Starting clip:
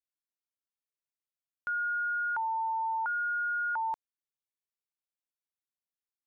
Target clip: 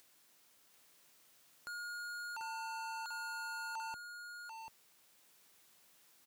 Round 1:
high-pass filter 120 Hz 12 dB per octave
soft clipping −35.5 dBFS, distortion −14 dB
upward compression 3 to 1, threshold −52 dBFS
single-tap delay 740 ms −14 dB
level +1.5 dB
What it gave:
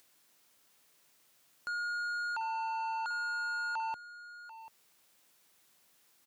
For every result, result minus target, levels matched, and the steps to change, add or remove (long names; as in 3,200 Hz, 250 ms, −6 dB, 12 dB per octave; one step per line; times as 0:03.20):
echo-to-direct −9 dB; soft clipping: distortion −5 dB
change: single-tap delay 740 ms −5 dB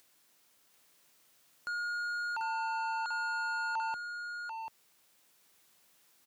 soft clipping: distortion −5 dB
change: soft clipping −45 dBFS, distortion −9 dB